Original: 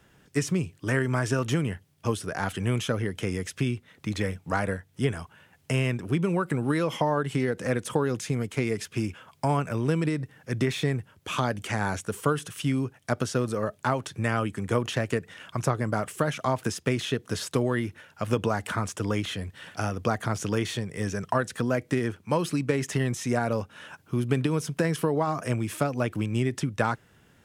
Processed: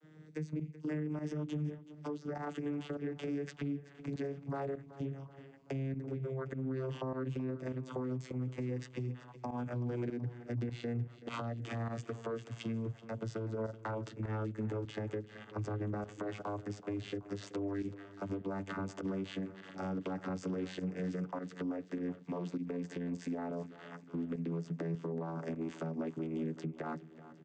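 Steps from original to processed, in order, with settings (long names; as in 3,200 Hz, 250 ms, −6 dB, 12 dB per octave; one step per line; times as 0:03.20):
vocoder with a gliding carrier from D#3, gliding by −12 semitones
high-pass filter 250 Hz 12 dB per octave
low-shelf EQ 470 Hz +7.5 dB
comb filter 7 ms, depth 39%
downward compressor 16 to 1, threshold −33 dBFS, peak gain reduction 18.5 dB
brickwall limiter −32.5 dBFS, peak gain reduction 9 dB
fake sidechain pumping 101 BPM, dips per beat 1, −14 dB, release 65 ms
on a send: repeating echo 379 ms, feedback 53%, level −16 dB
on the sum: level +2.5 dB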